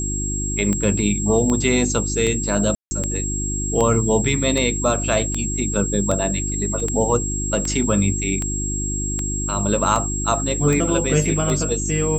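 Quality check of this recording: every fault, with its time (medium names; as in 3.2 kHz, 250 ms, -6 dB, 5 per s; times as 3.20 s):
hum 50 Hz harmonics 7 -26 dBFS
tick 78 rpm -10 dBFS
whine 7.6 kHz -25 dBFS
2.75–2.91 s: dropout 160 ms
6.80 s: dropout 2.5 ms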